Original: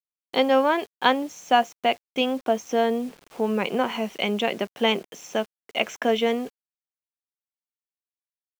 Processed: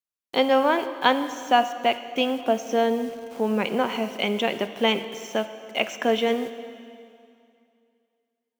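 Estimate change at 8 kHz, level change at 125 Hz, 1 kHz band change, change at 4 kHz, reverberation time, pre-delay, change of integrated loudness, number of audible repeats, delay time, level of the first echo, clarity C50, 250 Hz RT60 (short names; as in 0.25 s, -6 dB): +0.5 dB, +0.5 dB, +0.5 dB, +0.5 dB, 2.5 s, 7 ms, 0.0 dB, none, none, none, 11.5 dB, 2.5 s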